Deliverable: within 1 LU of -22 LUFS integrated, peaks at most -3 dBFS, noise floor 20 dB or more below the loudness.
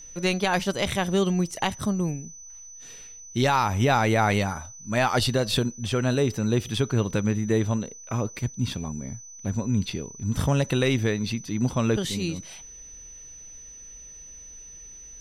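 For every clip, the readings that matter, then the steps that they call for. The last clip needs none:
steady tone 6000 Hz; tone level -42 dBFS; loudness -25.5 LUFS; peak -10.5 dBFS; loudness target -22.0 LUFS
-> notch 6000 Hz, Q 30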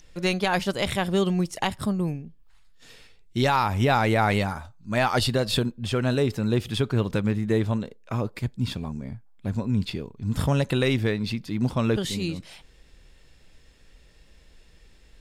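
steady tone none; loudness -25.5 LUFS; peak -10.5 dBFS; loudness target -22.0 LUFS
-> gain +3.5 dB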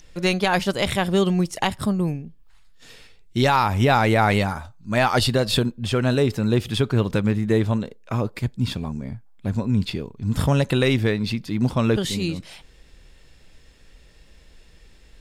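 loudness -22.0 LUFS; peak -7.0 dBFS; noise floor -51 dBFS

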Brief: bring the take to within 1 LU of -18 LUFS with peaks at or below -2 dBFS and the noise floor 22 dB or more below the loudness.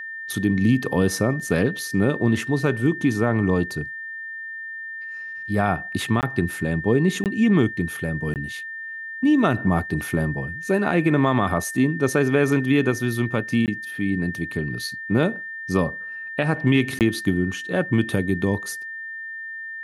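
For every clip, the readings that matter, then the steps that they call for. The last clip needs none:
dropouts 5; longest dropout 18 ms; steady tone 1800 Hz; tone level -31 dBFS; loudness -23.0 LUFS; peak -7.0 dBFS; loudness target -18.0 LUFS
-> interpolate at 6.21/7.24/8.34/13.66/16.99, 18 ms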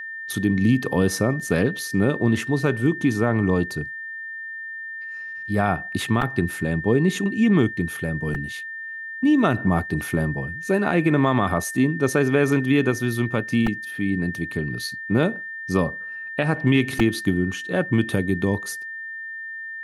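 dropouts 0; steady tone 1800 Hz; tone level -31 dBFS
-> notch 1800 Hz, Q 30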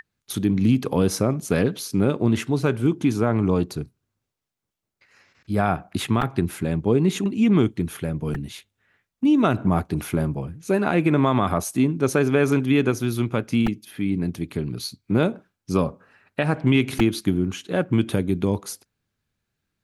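steady tone none; loudness -22.5 LUFS; peak -7.5 dBFS; loudness target -18.0 LUFS
-> gain +4.5 dB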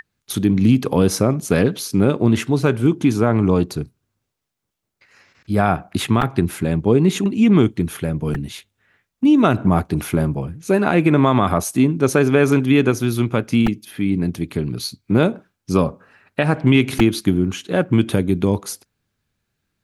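loudness -18.0 LUFS; peak -3.0 dBFS; noise floor -77 dBFS

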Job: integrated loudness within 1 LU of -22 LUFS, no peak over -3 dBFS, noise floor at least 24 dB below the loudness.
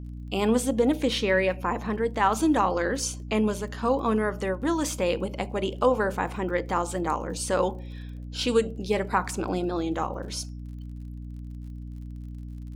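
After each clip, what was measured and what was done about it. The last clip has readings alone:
ticks 42/s; hum 60 Hz; harmonics up to 300 Hz; hum level -35 dBFS; loudness -26.5 LUFS; peak -9.0 dBFS; loudness target -22.0 LUFS
-> de-click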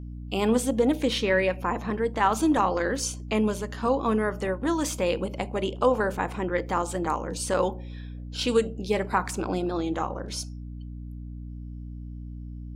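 ticks 0.24/s; hum 60 Hz; harmonics up to 300 Hz; hum level -35 dBFS
-> de-hum 60 Hz, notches 5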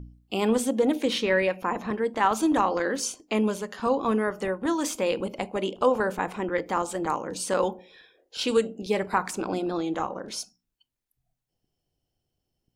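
hum none; loudness -27.0 LUFS; peak -9.0 dBFS; loudness target -22.0 LUFS
-> gain +5 dB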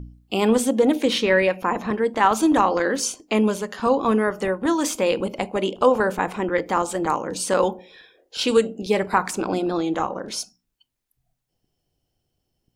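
loudness -22.0 LUFS; peak -4.0 dBFS; noise floor -78 dBFS

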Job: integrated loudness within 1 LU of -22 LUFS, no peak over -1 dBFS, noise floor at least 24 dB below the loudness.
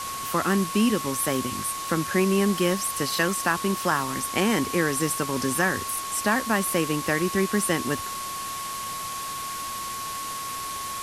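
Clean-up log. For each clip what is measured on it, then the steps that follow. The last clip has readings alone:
steady tone 1100 Hz; tone level -32 dBFS; noise floor -33 dBFS; noise floor target -50 dBFS; loudness -25.5 LUFS; peak -7.5 dBFS; loudness target -22.0 LUFS
-> notch 1100 Hz, Q 30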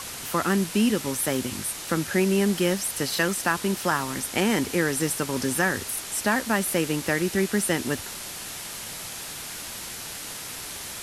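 steady tone none; noise floor -37 dBFS; noise floor target -50 dBFS
-> noise print and reduce 13 dB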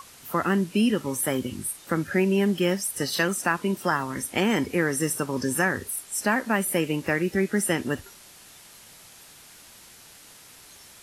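noise floor -50 dBFS; loudness -25.5 LUFS; peak -8.5 dBFS; loudness target -22.0 LUFS
-> gain +3.5 dB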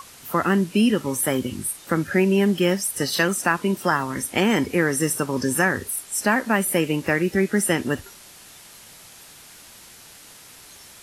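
loudness -22.0 LUFS; peak -5.0 dBFS; noise floor -46 dBFS

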